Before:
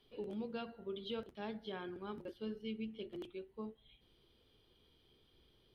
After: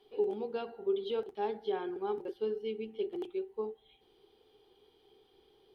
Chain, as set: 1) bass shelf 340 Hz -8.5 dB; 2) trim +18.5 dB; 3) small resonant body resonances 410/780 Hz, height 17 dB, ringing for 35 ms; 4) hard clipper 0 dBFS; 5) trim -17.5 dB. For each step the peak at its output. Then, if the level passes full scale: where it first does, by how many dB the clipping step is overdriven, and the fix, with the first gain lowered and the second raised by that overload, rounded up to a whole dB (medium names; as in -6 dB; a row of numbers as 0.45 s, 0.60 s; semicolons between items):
-32.5 dBFS, -14.0 dBFS, -3.5 dBFS, -3.5 dBFS, -21.0 dBFS; nothing clips